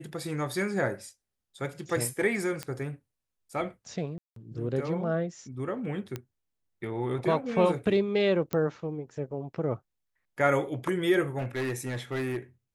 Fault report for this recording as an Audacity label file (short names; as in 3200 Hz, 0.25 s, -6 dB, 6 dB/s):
2.630000	2.630000	pop -19 dBFS
4.180000	4.360000	gap 0.183 s
6.160000	6.160000	pop -20 dBFS
8.530000	8.530000	pop -16 dBFS
11.380000	12.370000	clipped -27 dBFS